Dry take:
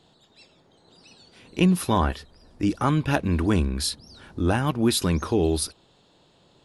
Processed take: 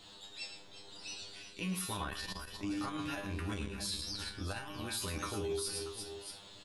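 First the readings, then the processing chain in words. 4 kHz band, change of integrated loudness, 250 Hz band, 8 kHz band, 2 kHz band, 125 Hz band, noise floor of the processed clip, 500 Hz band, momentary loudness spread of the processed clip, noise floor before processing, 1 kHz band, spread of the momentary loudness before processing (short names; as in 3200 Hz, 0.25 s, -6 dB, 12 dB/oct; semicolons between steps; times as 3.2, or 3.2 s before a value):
-7.5 dB, -15.5 dB, -17.5 dB, -8.5 dB, -9.5 dB, -18.0 dB, -55 dBFS, -14.5 dB, 9 LU, -60 dBFS, -15.0 dB, 9 LU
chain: tilt shelf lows -6 dB, about 1100 Hz; reverse; compressor 10:1, threshold -37 dBFS, peak gain reduction 21 dB; reverse; low shelf 72 Hz +11 dB; resonator 100 Hz, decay 0.25 s, harmonics all, mix 100%; on a send: tapped delay 0.11/0.35/0.362/0.635 s -9/-13.5/-17.5/-14.5 dB; on the sum: limiter -41 dBFS, peak gain reduction 8 dB; notches 50/100/150/200 Hz; core saturation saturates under 150 Hz; gain +13 dB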